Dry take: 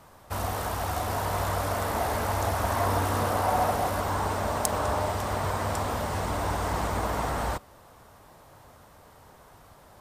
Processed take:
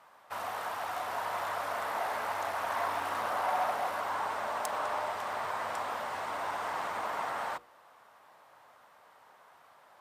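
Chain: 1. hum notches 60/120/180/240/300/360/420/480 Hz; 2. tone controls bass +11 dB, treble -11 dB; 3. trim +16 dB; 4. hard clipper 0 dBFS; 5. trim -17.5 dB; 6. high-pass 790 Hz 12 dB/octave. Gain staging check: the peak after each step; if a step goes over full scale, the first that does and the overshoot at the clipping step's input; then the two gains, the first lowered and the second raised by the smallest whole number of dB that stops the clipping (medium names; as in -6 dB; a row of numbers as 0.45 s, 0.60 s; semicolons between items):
-1.5 dBFS, -10.5 dBFS, +5.5 dBFS, 0.0 dBFS, -17.5 dBFS, -15.5 dBFS; step 3, 5.5 dB; step 3 +10 dB, step 5 -11.5 dB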